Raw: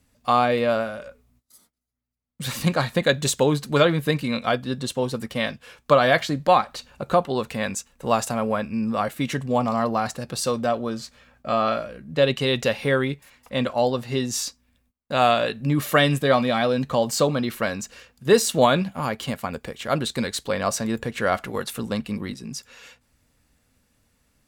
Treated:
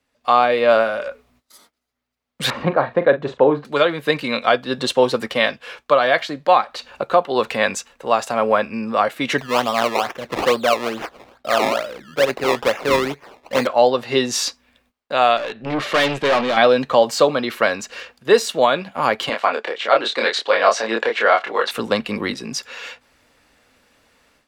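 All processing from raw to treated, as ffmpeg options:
ffmpeg -i in.wav -filter_complex "[0:a]asettb=1/sr,asplit=3[link_01][link_02][link_03];[link_01]atrim=end=2.504[link_04];[link_02]atrim=start=2.5:end=3.65,asetpts=PTS-STARTPTS,afade=type=in:duration=0.004:curve=qsin,afade=type=out:start_time=1.146:duration=0.004:curve=qsin,lowpass=1200,asplit=2[link_05][link_06];[link_06]adelay=42,volume=-11.5dB[link_07];[link_05][link_07]amix=inputs=2:normalize=0,atrim=end_sample=50715[link_08];[link_03]atrim=start=3.646[link_09];[link_04][link_08]acrossfade=duration=0.004:curve1=hsin:curve2=qsin[link_10];[link_10][link_09]acrossfade=duration=0.004:curve1=qsin:curve2=hsin,asettb=1/sr,asplit=3[link_11][link_12][link_13];[link_11]atrim=end=9.384[link_14];[link_12]atrim=start=9.38:end=13.67,asetpts=PTS-STARTPTS,afade=type=in:duration=0.004:curve=qsin,afade=type=out:start_time=4.286:duration=0.004:curve=qsin,acrusher=samples=20:mix=1:aa=0.000001:lfo=1:lforange=20:lforate=2.3,tremolo=f=120:d=0.261[link_15];[link_13]atrim=start=13.666[link_16];[link_14][link_15]acrossfade=duration=0.004:curve1=hsin:curve2=qsin[link_17];[link_17][link_16]acrossfade=duration=0.004:curve1=qsin:curve2=hsin,asettb=1/sr,asplit=3[link_18][link_19][link_20];[link_18]atrim=end=15.374[link_21];[link_19]atrim=start=15.37:end=16.57,asetpts=PTS-STARTPTS,afade=type=in:duration=0.004:curve=qsin,afade=type=out:start_time=1.196:duration=0.004:curve=qsin,lowpass=5100,aeval=exprs='(tanh(20*val(0)+0.45)-tanh(0.45))/20':channel_layout=same[link_22];[link_20]atrim=start=16.566[link_23];[link_21][link_22]acrossfade=duration=0.004:curve1=hsin:curve2=qsin[link_24];[link_24][link_23]acrossfade=duration=0.004:curve1=qsin:curve2=hsin,asettb=1/sr,asplit=3[link_25][link_26][link_27];[link_25]atrim=end=19.294[link_28];[link_26]atrim=start=19.29:end=21.71,asetpts=PTS-STARTPTS,afade=type=in:duration=0.004:curve=qsin,afade=type=out:start_time=2.416:duration=0.004:curve=qsin,aphaser=in_gain=1:out_gain=1:delay=4.8:decay=0.27:speed=1.8:type=triangular,highpass=410,lowpass=5200,asplit=2[link_29][link_30];[link_30]adelay=27,volume=-3dB[link_31];[link_29][link_31]amix=inputs=2:normalize=0,atrim=end_sample=106722[link_32];[link_27]atrim=start=21.706[link_33];[link_28][link_32]acrossfade=duration=0.004:curve1=hsin:curve2=qsin[link_34];[link_34][link_33]acrossfade=duration=0.004:curve1=qsin:curve2=hsin,acrossover=split=320 4900:gain=0.158 1 0.251[link_35][link_36][link_37];[link_35][link_36][link_37]amix=inputs=3:normalize=0,dynaudnorm=framelen=120:gausssize=3:maxgain=15dB,volume=-1dB" out.wav

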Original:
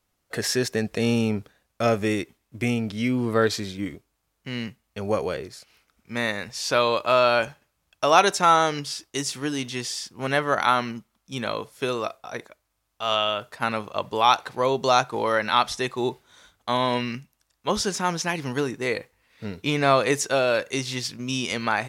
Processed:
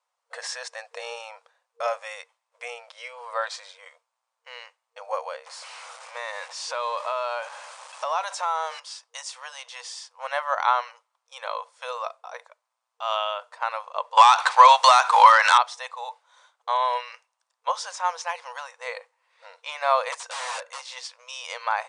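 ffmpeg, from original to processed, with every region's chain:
ffmpeg -i in.wav -filter_complex "[0:a]asettb=1/sr,asplit=3[link_01][link_02][link_03];[link_01]atrim=end=5.464[link_04];[link_02]atrim=start=5.46:end=8.8,asetpts=PTS-STARTPTS,afade=type=in:duration=0.004:curve=qsin,afade=type=out:start_time=3.336:duration=0.004:curve=qsin,aeval=exprs='val(0)+0.5*0.0299*sgn(val(0))':channel_layout=same,acompressor=threshold=-23dB:ratio=3:attack=3.2:release=140:knee=1:detection=peak[link_05];[link_03]atrim=start=8.796[link_06];[link_04][link_05]acrossfade=duration=0.004:curve1=hsin:curve2=qsin[link_07];[link_07][link_06]acrossfade=duration=0.004:curve1=qsin:curve2=hsin,asettb=1/sr,asplit=3[link_08][link_09][link_10];[link_08]atrim=end=14.174[link_11];[link_09]atrim=start=14.17:end=15.58,asetpts=PTS-STARTPTS,afade=type=in:duration=0.004:curve=qsin,afade=type=out:start_time=1.406:duration=0.004:curve=qsin,highpass=1200,acompressor=threshold=-28dB:ratio=8:attack=3.2:release=140:knee=1:detection=peak,aeval=exprs='0.531*sin(PI/2*8.91*val(0)/0.531)':channel_layout=same[link_12];[link_10]atrim=start=15.576[link_13];[link_11][link_12]acrossfade=duration=0.004:curve1=hsin:curve2=qsin[link_14];[link_14][link_13]acrossfade=duration=0.004:curve1=qsin:curve2=hsin,asettb=1/sr,asplit=3[link_15][link_16][link_17];[link_15]atrim=end=20.124[link_18];[link_16]atrim=start=20.12:end=20.85,asetpts=PTS-STARTPTS,afade=type=in:duration=0.004:curve=qsin,afade=type=out:start_time=0.726:duration=0.004:curve=qsin,bass=frequency=250:gain=-9,treble=frequency=4000:gain=-2,aeval=exprs='(mod(13.3*val(0)+1,2)-1)/13.3':channel_layout=same[link_19];[link_17]atrim=start=20.846[link_20];[link_18][link_19]acrossfade=duration=0.004:curve1=hsin:curve2=qsin[link_21];[link_21][link_20]acrossfade=duration=0.004:curve1=qsin:curve2=hsin,afftfilt=real='re*between(b*sr/4096,470,9800)':imag='im*between(b*sr/4096,470,9800)':win_size=4096:overlap=0.75,equalizer=frequency=990:width_type=o:width=0.73:gain=11,volume=-7dB" out.wav

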